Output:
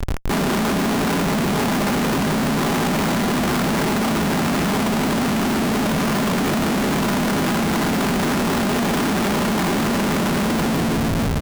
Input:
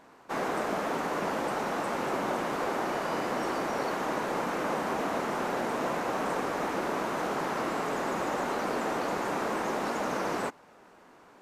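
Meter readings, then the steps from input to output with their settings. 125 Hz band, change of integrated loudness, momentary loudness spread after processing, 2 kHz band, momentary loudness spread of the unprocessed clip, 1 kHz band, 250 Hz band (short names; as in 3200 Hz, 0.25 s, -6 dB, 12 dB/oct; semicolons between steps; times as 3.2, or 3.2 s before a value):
+21.5 dB, +11.5 dB, 0 LU, +10.0 dB, 1 LU, +7.0 dB, +16.5 dB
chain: resonant low shelf 350 Hz +11.5 dB, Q 1.5; comb 5 ms, depth 99%; FDN reverb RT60 3.4 s, high-frequency decay 0.55×, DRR 2.5 dB; crackle 200/s -36 dBFS; Schmitt trigger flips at -35.5 dBFS; gain +1.5 dB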